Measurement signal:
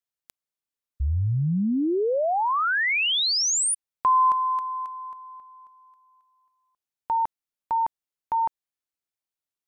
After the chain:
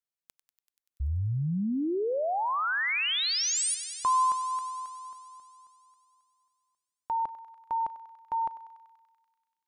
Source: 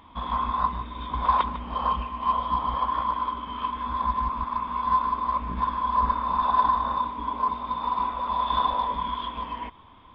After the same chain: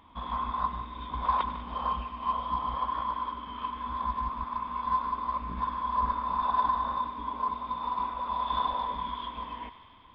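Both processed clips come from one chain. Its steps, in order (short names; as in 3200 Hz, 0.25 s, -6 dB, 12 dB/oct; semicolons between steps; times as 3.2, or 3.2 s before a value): thinning echo 96 ms, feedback 83%, high-pass 810 Hz, level -12.5 dB; gain -5.5 dB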